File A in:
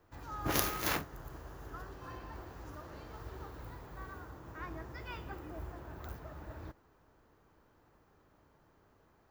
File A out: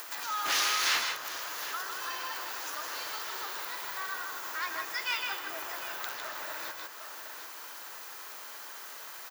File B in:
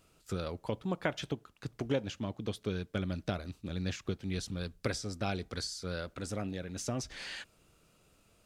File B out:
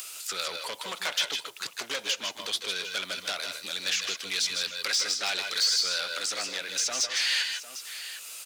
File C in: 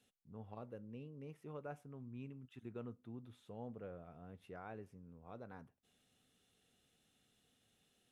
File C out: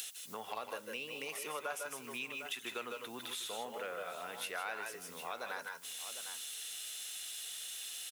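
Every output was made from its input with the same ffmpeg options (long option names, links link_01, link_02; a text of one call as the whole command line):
ffmpeg -i in.wav -filter_complex "[0:a]asplit=2[link_01][link_02];[link_02]highpass=frequency=720:poles=1,volume=34dB,asoftclip=type=tanh:threshold=-6dB[link_03];[link_01][link_03]amix=inputs=2:normalize=0,lowpass=frequency=6700:poles=1,volume=-6dB,aderivative,acrossover=split=190|5700[link_04][link_05][link_06];[link_06]acompressor=threshold=-42dB:ratio=6[link_07];[link_04][link_05][link_07]amix=inputs=3:normalize=0,aecho=1:1:146|156|158|753:0.251|0.355|0.316|0.168,acompressor=mode=upward:threshold=-33dB:ratio=2.5" out.wav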